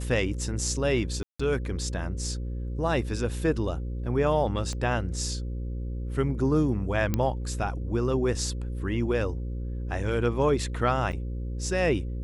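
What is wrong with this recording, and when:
buzz 60 Hz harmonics 9 -32 dBFS
1.23–1.4 gap 0.165 s
4.73 pop -23 dBFS
7.14 pop -12 dBFS
11.12–11.13 gap 7.5 ms

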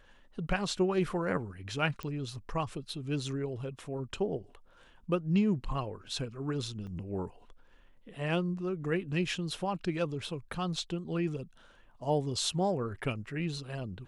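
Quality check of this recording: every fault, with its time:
2.03 pop -23 dBFS
6.87 gap 3.7 ms

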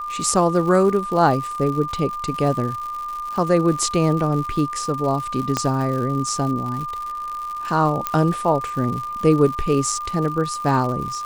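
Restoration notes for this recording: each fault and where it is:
crackle 150/s -28 dBFS
tone 1200 Hz -26 dBFS
5.57 pop -6 dBFS
8.07 pop -6 dBFS

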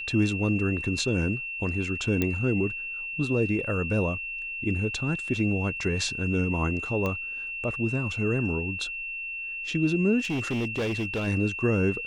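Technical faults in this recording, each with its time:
tone 2700 Hz -32 dBFS
2.22 pop -12 dBFS
7.06 pop -17 dBFS
10.19–11.28 clipped -24.5 dBFS

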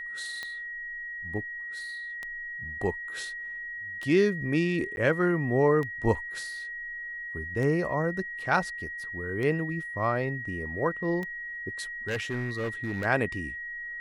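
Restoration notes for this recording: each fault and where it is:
tick 33 1/3 rpm -22 dBFS
tone 1900 Hz -35 dBFS
4.96–4.97 gap
12.07–13.06 clipped -26.5 dBFS

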